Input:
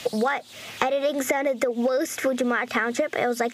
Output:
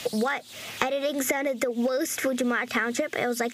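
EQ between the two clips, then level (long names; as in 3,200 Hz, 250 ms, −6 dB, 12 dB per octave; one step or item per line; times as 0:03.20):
high-shelf EQ 8,500 Hz +5 dB
dynamic equaliser 770 Hz, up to −5 dB, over −35 dBFS, Q 0.82
0.0 dB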